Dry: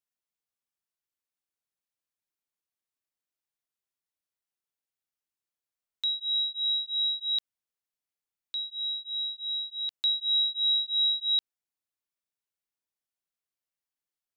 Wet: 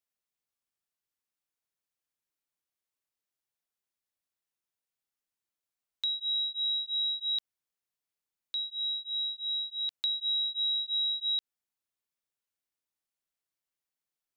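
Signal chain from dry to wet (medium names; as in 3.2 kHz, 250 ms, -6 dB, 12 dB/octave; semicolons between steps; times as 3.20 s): compression, threshold -28 dBFS, peak gain reduction 5.5 dB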